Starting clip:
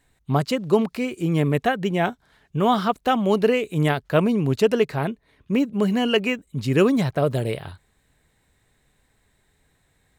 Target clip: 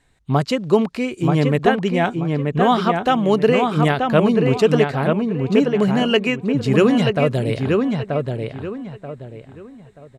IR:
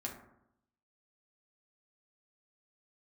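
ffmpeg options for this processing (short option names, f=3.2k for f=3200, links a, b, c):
-filter_complex "[0:a]lowpass=8.5k,asplit=2[a][b];[b]adelay=932,lowpass=f=2.8k:p=1,volume=-3.5dB,asplit=2[c][d];[d]adelay=932,lowpass=f=2.8k:p=1,volume=0.3,asplit=2[e][f];[f]adelay=932,lowpass=f=2.8k:p=1,volume=0.3,asplit=2[g][h];[h]adelay=932,lowpass=f=2.8k:p=1,volume=0.3[i];[a][c][e][g][i]amix=inputs=5:normalize=0,volume=3dB"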